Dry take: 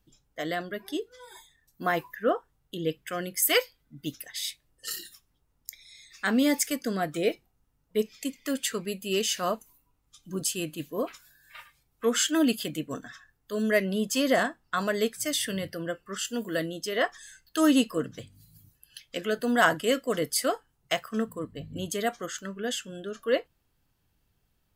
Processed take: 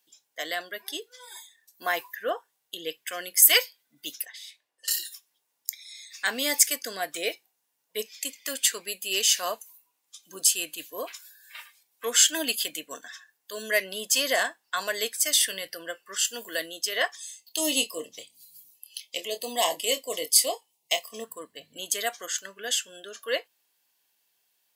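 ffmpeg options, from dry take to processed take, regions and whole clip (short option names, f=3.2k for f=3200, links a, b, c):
-filter_complex "[0:a]asettb=1/sr,asplit=3[a][b][c];[a]atrim=end=4.254[d];[b]atrim=start=4.25:end=4.88,asetpts=PTS-STARTPTS,afade=t=in:d=0.004:c=qsin,afade=t=out:st=0.626:d=0.004:c=qsin,acompressor=threshold=-40dB:ratio=4:attack=3.2:release=140:knee=1:detection=peak,asplit=2[e][f];[f]highpass=f=720:p=1,volume=7dB,asoftclip=type=tanh:threshold=-25dB[g];[e][g]amix=inputs=2:normalize=0,lowpass=f=1.2k:p=1,volume=-6dB[h];[c]atrim=start=4.876[i];[d][h]acrossfade=d=0.004:c1=hsin:c2=qsin[j];[j][i]acrossfade=d=0.004:c1=qsin:c2=hsin,asettb=1/sr,asplit=3[k][l][m];[k]atrim=end=17.154[n];[l]atrim=start=17.15:end=21.24,asetpts=PTS-STARTPTS,afade=t=in:d=0.004:c=qsin,afade=t=out:st=4.086:d=0.004:c=qsin,asuperstop=centerf=1500:order=4:qfactor=1.3,asplit=2[o][p];[p]adelay=26,volume=-10dB[q];[o][q]amix=inputs=2:normalize=0,atrim=end_sample=180369[r];[m]atrim=start=21.236[s];[n][r]acrossfade=d=0.004:c1=hsin:c2=qsin[t];[t][s]acrossfade=d=0.004:c1=qsin:c2=hsin,highpass=570,highshelf=f=2.3k:g=10.5,bandreject=f=1.3k:w=6.6,volume=-1dB"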